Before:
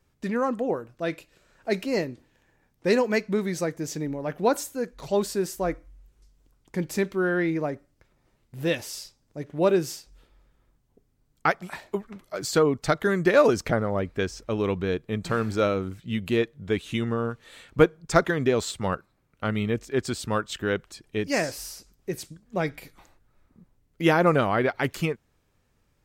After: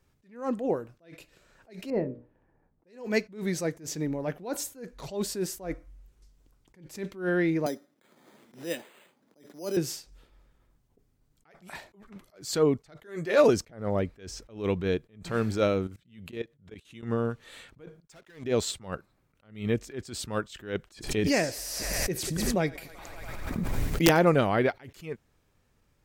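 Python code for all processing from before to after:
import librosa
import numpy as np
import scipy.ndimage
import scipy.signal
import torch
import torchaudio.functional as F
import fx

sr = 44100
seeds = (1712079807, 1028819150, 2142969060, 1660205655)

y = fx.chain(x, sr, fx.lowpass(hz=1000.0, slope=12),
    fx.hum_notches(base_hz=60, count=10), at=(1.9, 2.87))
y = fx.chain(y, sr, fx.cheby1_highpass(hz=210.0, order=3),
    fx.resample_bad(factor=8, down='filtered', up='hold'),
    fx.band_squash(depth_pct=70), at=(7.66, 9.77))
y = fx.chain(y, sr, fx.bass_treble(bass_db=-9, treble_db=0),
    fx.doubler(ms=13.0, db=-7.5), at=(13.03, 13.44))
y = fx.chain(y, sr, fx.highpass(hz=44.0, slope=12),
    fx.level_steps(step_db=22), at=(15.87, 17.03))
y = fx.chain(y, sr, fx.low_shelf(hz=450.0, db=-10.0),
    fx.leveller(passes=5), at=(18.0, 18.44))
y = fx.chain(y, sr, fx.overflow_wrap(gain_db=9.0),
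    fx.echo_thinned(ms=95, feedback_pct=73, hz=310.0, wet_db=-23),
    fx.pre_swell(db_per_s=27.0), at=(20.9, 24.25))
y = fx.dynamic_eq(y, sr, hz=1200.0, q=1.5, threshold_db=-39.0, ratio=4.0, max_db=-5)
y = fx.attack_slew(y, sr, db_per_s=150.0)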